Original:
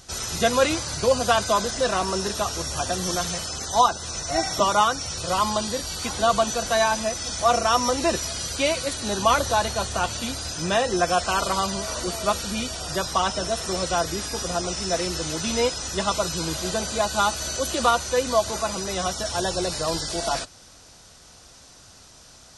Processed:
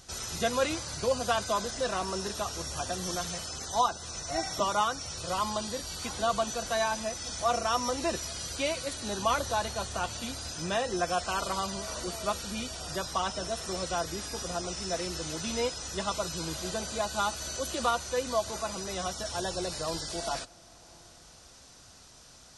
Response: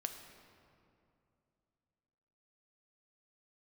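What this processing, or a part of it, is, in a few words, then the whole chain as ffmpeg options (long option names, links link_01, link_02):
ducked reverb: -filter_complex "[0:a]asplit=3[link_01][link_02][link_03];[1:a]atrim=start_sample=2205[link_04];[link_02][link_04]afir=irnorm=-1:irlink=0[link_05];[link_03]apad=whole_len=995379[link_06];[link_05][link_06]sidechaincompress=threshold=-37dB:ratio=8:attack=16:release=535,volume=-3.5dB[link_07];[link_01][link_07]amix=inputs=2:normalize=0,volume=-8.5dB"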